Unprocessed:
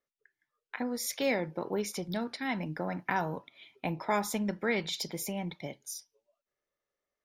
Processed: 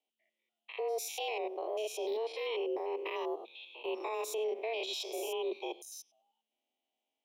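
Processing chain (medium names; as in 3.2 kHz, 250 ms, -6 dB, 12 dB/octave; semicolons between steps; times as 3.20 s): spectrogram pixelated in time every 100 ms; frequency shift +220 Hz; FFT filter 190 Hz 0 dB, 320 Hz +7 dB, 1 kHz -1 dB, 1.5 kHz -21 dB, 3 kHz +14 dB, 4.4 kHz -2 dB; peak limiter -28 dBFS, peak gain reduction 9.5 dB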